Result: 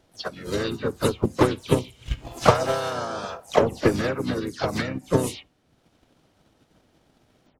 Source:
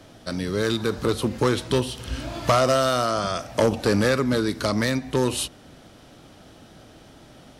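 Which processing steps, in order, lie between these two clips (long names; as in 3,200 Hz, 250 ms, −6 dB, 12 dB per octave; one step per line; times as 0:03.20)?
every frequency bin delayed by itself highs early, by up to 133 ms
noise reduction from a noise print of the clip's start 9 dB
transient designer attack +12 dB, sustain −4 dB
pitch-shifted copies added −5 semitones −5 dB, +3 semitones −8 dB, +4 semitones −12 dB
level −7.5 dB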